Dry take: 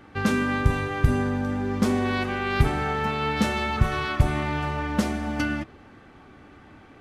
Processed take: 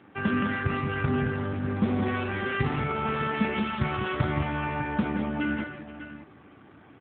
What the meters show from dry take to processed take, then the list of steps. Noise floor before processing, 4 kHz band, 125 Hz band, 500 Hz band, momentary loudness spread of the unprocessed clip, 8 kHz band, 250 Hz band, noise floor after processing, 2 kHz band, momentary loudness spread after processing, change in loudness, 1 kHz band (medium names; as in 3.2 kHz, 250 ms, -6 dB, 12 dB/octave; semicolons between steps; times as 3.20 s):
-50 dBFS, -5.5 dB, -4.0 dB, -3.0 dB, 4 LU, under -40 dB, -2.0 dB, -53 dBFS, -2.5 dB, 6 LU, -3.0 dB, -3.0 dB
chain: tracing distortion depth 0.026 ms; multi-tap echo 40/172/201/478/602 ms -10/-7/-8.5/-16.5/-11.5 dB; trim -2.5 dB; AMR-NB 7.4 kbps 8 kHz